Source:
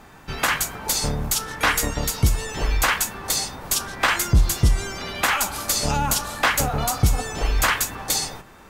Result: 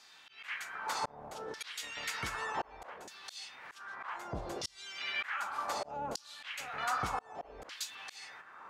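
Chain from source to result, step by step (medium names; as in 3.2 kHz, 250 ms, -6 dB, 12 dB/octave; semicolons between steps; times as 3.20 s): LFO band-pass saw down 0.65 Hz 450–5000 Hz; slow attack 590 ms; trim +3.5 dB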